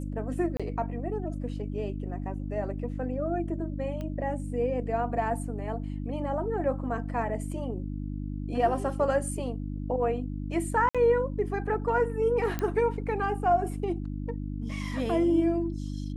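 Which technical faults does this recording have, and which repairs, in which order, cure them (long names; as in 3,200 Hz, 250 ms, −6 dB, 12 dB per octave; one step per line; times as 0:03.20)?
mains hum 50 Hz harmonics 6 −34 dBFS
0:00.57–0:00.60: drop-out 26 ms
0:04.01: click −25 dBFS
0:10.89–0:10.95: drop-out 56 ms
0:12.59: click −16 dBFS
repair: click removal
hum removal 50 Hz, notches 6
repair the gap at 0:00.57, 26 ms
repair the gap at 0:10.89, 56 ms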